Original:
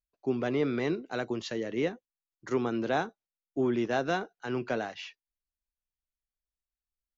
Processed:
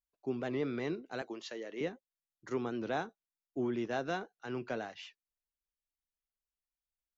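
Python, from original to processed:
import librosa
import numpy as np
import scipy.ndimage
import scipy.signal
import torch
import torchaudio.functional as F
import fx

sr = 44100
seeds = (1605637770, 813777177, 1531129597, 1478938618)

y = fx.highpass(x, sr, hz=370.0, slope=12, at=(1.22, 1.81))
y = fx.record_warp(y, sr, rpm=78.0, depth_cents=100.0)
y = y * librosa.db_to_amplitude(-6.5)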